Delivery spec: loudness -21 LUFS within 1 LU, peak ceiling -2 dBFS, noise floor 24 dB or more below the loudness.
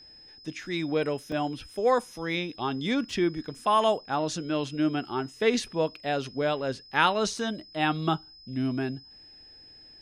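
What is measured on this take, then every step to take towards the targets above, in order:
dropouts 1; longest dropout 2.1 ms; steady tone 5100 Hz; tone level -49 dBFS; loudness -28.5 LUFS; peak -8.0 dBFS; loudness target -21.0 LUFS
-> interpolate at 1.32, 2.1 ms; notch 5100 Hz, Q 30; gain +7.5 dB; limiter -2 dBFS

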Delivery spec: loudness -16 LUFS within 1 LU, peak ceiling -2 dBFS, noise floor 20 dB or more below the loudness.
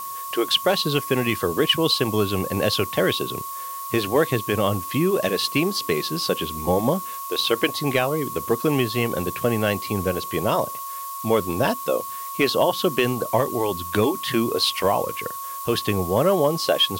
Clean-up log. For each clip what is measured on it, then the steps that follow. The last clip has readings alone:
steady tone 1100 Hz; tone level -31 dBFS; noise floor -33 dBFS; noise floor target -43 dBFS; loudness -22.5 LUFS; peak -7.5 dBFS; loudness target -16.0 LUFS
-> notch 1100 Hz, Q 30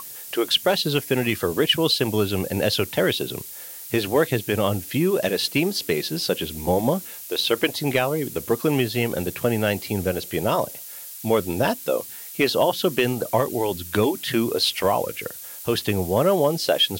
steady tone none; noise floor -38 dBFS; noise floor target -43 dBFS
-> denoiser 6 dB, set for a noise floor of -38 dBFS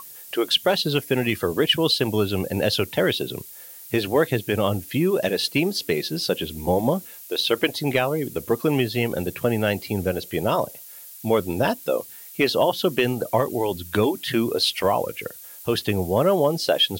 noise floor -42 dBFS; noise floor target -43 dBFS
-> denoiser 6 dB, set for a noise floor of -42 dBFS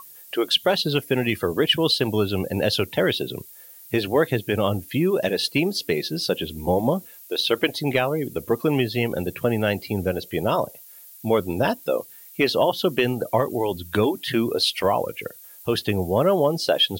noise floor -46 dBFS; loudness -23.0 LUFS; peak -8.0 dBFS; loudness target -16.0 LUFS
-> gain +7 dB; limiter -2 dBFS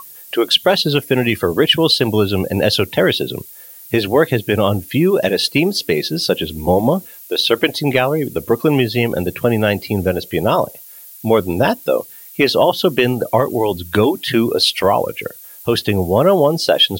loudness -16.0 LUFS; peak -2.0 dBFS; noise floor -39 dBFS

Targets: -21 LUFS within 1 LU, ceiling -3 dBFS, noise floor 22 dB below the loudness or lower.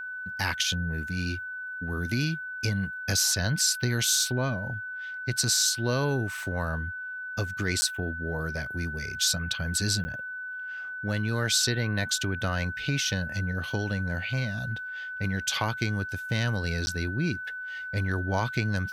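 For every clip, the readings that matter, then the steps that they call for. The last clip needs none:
dropouts 3; longest dropout 10 ms; steady tone 1500 Hz; tone level -34 dBFS; loudness -28.5 LUFS; peak -12.5 dBFS; loudness target -21.0 LUFS
-> interpolate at 7.81/10.04/16.86, 10 ms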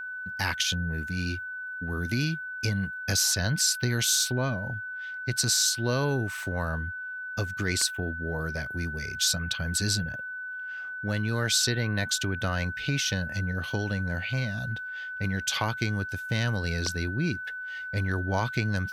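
dropouts 0; steady tone 1500 Hz; tone level -34 dBFS
-> notch 1500 Hz, Q 30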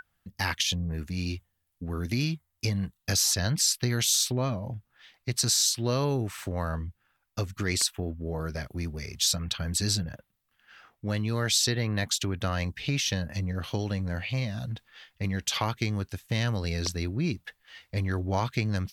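steady tone none; loudness -28.5 LUFS; peak -13.0 dBFS; loudness target -21.0 LUFS
-> gain +7.5 dB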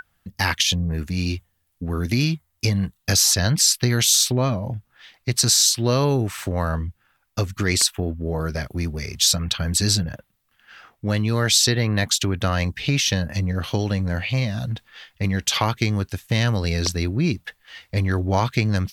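loudness -21.0 LUFS; peak -5.5 dBFS; noise floor -69 dBFS

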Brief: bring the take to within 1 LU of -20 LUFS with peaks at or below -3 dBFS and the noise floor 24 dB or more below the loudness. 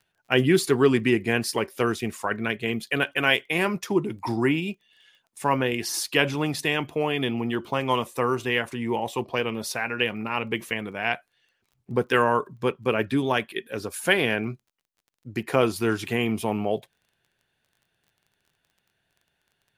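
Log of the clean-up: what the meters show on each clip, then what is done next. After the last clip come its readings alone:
ticks 19/s; loudness -25.5 LUFS; peak -4.5 dBFS; loudness target -20.0 LUFS
-> de-click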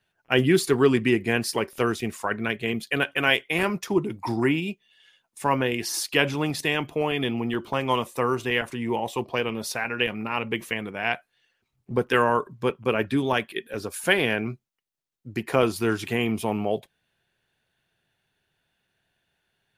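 ticks 0/s; loudness -25.5 LUFS; peak -4.5 dBFS; loudness target -20.0 LUFS
-> gain +5.5 dB; limiter -3 dBFS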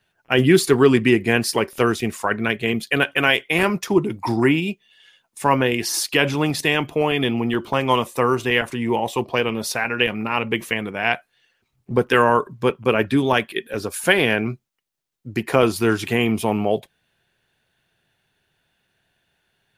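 loudness -20.0 LUFS; peak -3.0 dBFS; noise floor -71 dBFS

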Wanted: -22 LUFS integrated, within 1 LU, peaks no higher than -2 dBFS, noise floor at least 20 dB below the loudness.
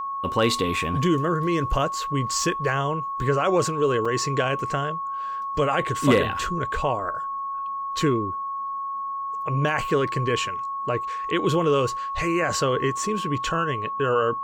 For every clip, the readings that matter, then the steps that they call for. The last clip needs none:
dropouts 1; longest dropout 4.5 ms; steady tone 1100 Hz; tone level -27 dBFS; loudness -24.5 LUFS; peak -6.0 dBFS; loudness target -22.0 LUFS
-> interpolate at 4.05, 4.5 ms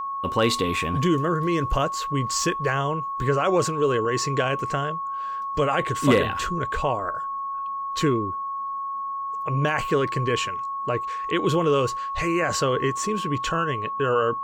dropouts 0; steady tone 1100 Hz; tone level -27 dBFS
-> notch 1100 Hz, Q 30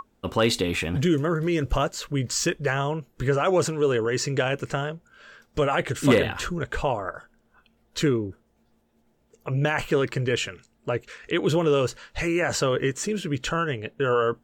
steady tone none; loudness -25.0 LUFS; peak -6.0 dBFS; loudness target -22.0 LUFS
-> gain +3 dB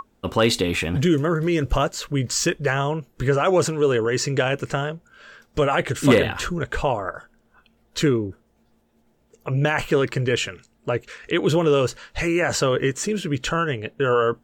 loudness -22.0 LUFS; peak -3.0 dBFS; noise floor -63 dBFS

